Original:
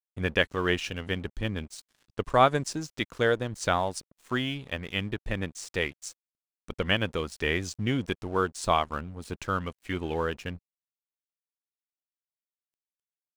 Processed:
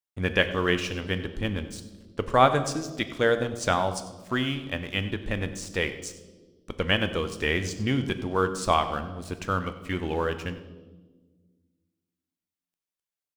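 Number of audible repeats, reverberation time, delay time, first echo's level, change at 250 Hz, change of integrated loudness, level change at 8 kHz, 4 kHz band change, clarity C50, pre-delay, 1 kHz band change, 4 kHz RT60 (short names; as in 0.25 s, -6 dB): 1, 1.4 s, 96 ms, -16.5 dB, +2.5 dB, +2.0 dB, +2.0 dB, +2.0 dB, 11.5 dB, 4 ms, +2.0 dB, 1.1 s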